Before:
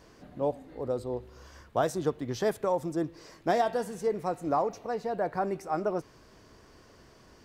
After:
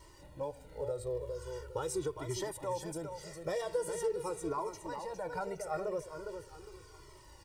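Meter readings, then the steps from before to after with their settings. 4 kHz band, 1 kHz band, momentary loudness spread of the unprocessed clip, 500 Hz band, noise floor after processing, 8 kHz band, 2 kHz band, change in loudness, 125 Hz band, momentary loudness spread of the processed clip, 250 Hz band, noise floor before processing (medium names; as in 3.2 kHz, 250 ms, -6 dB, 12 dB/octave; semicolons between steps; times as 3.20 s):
-3.0 dB, -9.5 dB, 9 LU, -6.0 dB, -56 dBFS, +3.0 dB, -7.0 dB, -7.5 dB, -5.5 dB, 16 LU, -10.0 dB, -57 dBFS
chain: peaking EQ 9 kHz +11 dB 0.57 oct; band-stop 1.6 kHz, Q 9.2; comb 2.1 ms, depth 99%; in parallel at 0 dB: peak limiter -21 dBFS, peak gain reduction 9 dB; on the sum: compression, threshold -21 dBFS, peak gain reduction 7 dB; bit crusher 11-bit; crackle 59 per s -41 dBFS; on a send: feedback delay 408 ms, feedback 32%, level -7.5 dB; on the sum: Shepard-style flanger falling 0.42 Hz; trim -6.5 dB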